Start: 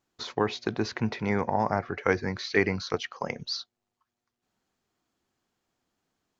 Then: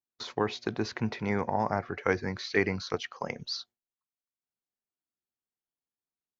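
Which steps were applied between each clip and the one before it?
gate with hold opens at -37 dBFS; gain -2.5 dB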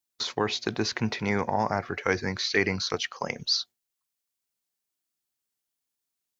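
high shelf 2700 Hz +10 dB; in parallel at -1 dB: limiter -16.5 dBFS, peak gain reduction 8.5 dB; on the sum: gain -3 dB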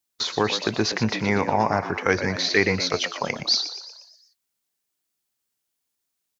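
frequency-shifting echo 0.119 s, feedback 53%, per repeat +80 Hz, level -11 dB; gain +4.5 dB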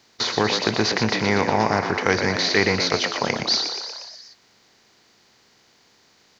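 per-bin compression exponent 0.6; gain -1.5 dB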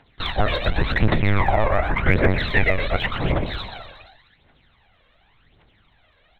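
LPC vocoder at 8 kHz pitch kept; phaser 0.89 Hz, delay 1.9 ms, feedback 61%; gain -1 dB

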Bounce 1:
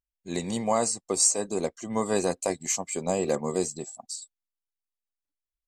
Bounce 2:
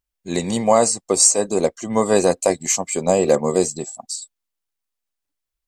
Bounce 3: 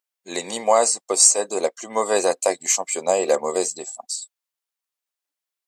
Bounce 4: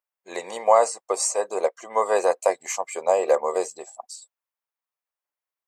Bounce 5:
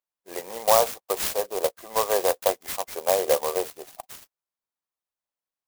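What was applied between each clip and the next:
dynamic EQ 550 Hz, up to +4 dB, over -35 dBFS, Q 2.2; gain +8 dB
HPF 510 Hz 12 dB/oct
graphic EQ 125/250/500/1000/2000/4000/8000 Hz -6/-7/+6/+7/+3/-5/-5 dB; gain -6 dB
clock jitter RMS 0.097 ms; gain -2 dB

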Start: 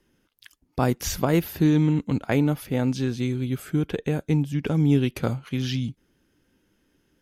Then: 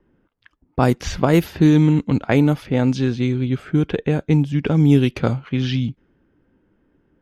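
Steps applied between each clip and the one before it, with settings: low-pass opened by the level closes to 1300 Hz, open at -15.5 dBFS; gain +6 dB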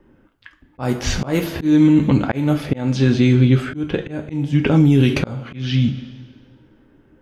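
two-slope reverb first 0.31 s, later 1.6 s, from -17 dB, DRR 4.5 dB; auto swell 0.47 s; limiter -13.5 dBFS, peak gain reduction 10.5 dB; gain +8 dB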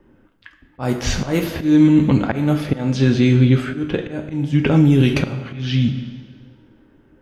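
digital reverb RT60 1.5 s, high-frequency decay 0.8×, pre-delay 5 ms, DRR 12 dB

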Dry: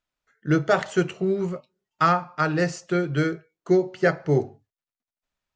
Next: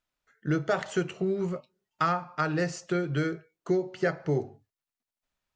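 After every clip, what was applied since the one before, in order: compressor 2:1, threshold -28 dBFS, peak gain reduction 8 dB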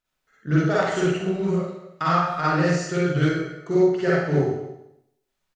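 speakerphone echo 0.23 s, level -16 dB; reverb RT60 0.75 s, pre-delay 41 ms, DRR -8 dB; Doppler distortion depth 0.11 ms; gain -1.5 dB

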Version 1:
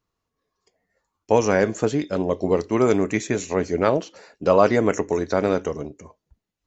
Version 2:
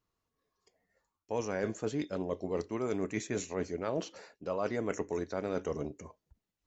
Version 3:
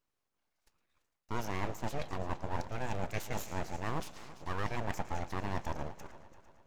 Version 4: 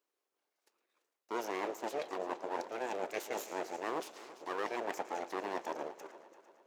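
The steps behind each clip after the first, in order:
reverse; compressor 6:1, threshold -26 dBFS, peak gain reduction 15 dB; reverse; ending taper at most 580 dB/s; gain -4.5 dB
multi-head echo 0.113 s, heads first and third, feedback 57%, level -17 dB; full-wave rectifier
ladder high-pass 320 Hz, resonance 45%; gain +8 dB

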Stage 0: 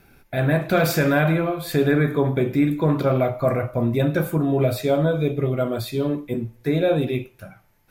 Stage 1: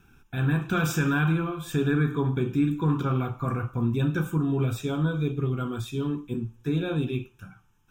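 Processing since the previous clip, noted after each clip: fixed phaser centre 3000 Hz, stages 8; gain -2 dB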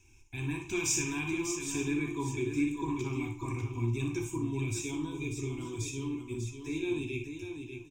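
EQ curve 110 Hz 0 dB, 170 Hz -22 dB, 350 Hz +2 dB, 550 Hz -26 dB, 970 Hz -1 dB, 1400 Hz -27 dB, 2200 Hz +7 dB, 3500 Hz -5 dB, 6600 Hz +13 dB, 13000 Hz -7 dB; on a send: tapped delay 59/594/889 ms -9.5/-7.5/-18.5 dB; on the sum: gain -2.5 dB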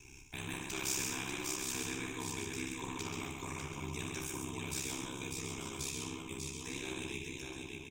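ring modulator 33 Hz; echo 0.133 s -7.5 dB; spectral compressor 2:1; gain -4.5 dB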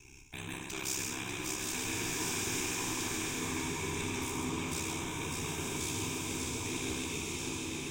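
bloom reverb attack 1.54 s, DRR -3 dB

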